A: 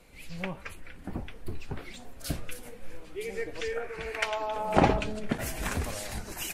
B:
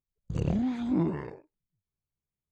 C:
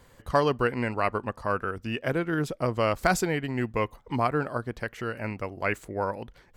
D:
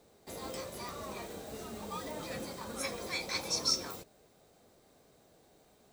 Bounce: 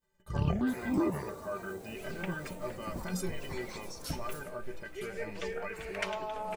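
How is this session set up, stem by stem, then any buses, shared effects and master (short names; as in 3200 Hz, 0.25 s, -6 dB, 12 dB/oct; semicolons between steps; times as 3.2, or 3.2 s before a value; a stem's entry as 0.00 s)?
-5.5 dB, 1.80 s, no send, dry
+1.0 dB, 0.00 s, no send, step phaser 8.2 Hz 610–2300 Hz
+3.0 dB, 0.00 s, no send, expander -46 dBFS; limiter -21 dBFS, peak gain reduction 11 dB; metallic resonator 180 Hz, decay 0.22 s, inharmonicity 0.03
+1.5 dB, 0.40 s, no send, bell 3500 Hz -9.5 dB 1.8 oct; compressor 10:1, threshold -45 dBFS, peak gain reduction 14.5 dB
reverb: off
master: dry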